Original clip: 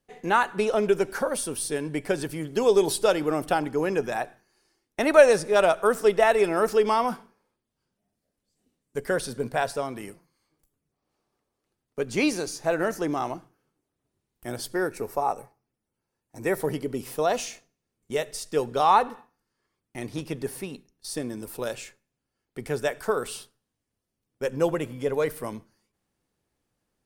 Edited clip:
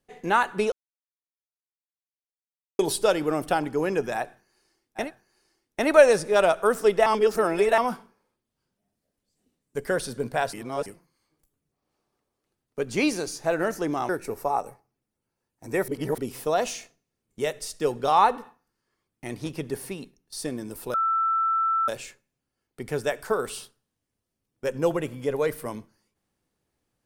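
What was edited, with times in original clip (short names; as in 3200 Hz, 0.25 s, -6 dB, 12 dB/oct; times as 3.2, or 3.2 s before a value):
0.72–2.79 mute
4.23–5.03 loop, 2 plays, crossfade 0.16 s
6.26–6.98 reverse
9.73–10.06 reverse
13.29–14.81 cut
16.6–16.9 reverse
21.66 add tone 1330 Hz -20.5 dBFS 0.94 s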